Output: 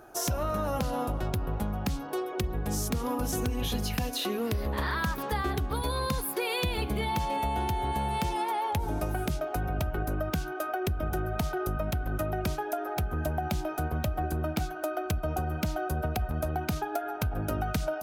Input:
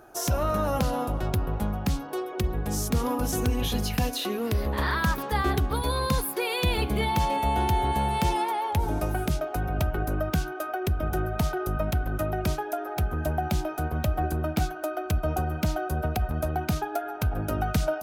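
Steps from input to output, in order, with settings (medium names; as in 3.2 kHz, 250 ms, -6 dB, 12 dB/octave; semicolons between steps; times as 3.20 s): compression, threshold -26 dBFS, peak gain reduction 7.5 dB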